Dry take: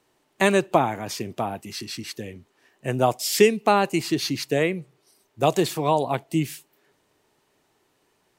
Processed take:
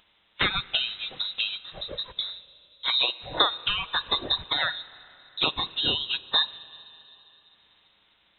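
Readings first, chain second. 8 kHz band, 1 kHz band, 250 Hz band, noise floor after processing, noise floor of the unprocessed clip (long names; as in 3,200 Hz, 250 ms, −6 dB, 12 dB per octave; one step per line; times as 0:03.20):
below −40 dB, −8.5 dB, −17.0 dB, −65 dBFS, −68 dBFS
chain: compressing power law on the bin magnitudes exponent 0.54
downward compressor 4 to 1, threshold −27 dBFS, peak gain reduction 14.5 dB
dynamic equaliser 590 Hz, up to −8 dB, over −44 dBFS, Q 0.73
leveller curve on the samples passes 1
noise reduction from a noise print of the clip's start 20 dB
flanger swept by the level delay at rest 8.4 ms, full sweep at −22.5 dBFS
noise gate with hold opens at −58 dBFS
upward compression, threshold −39 dBFS
four-comb reverb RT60 3.7 s, combs from 28 ms, DRR 18 dB
voice inversion scrambler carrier 3,900 Hz
level +8 dB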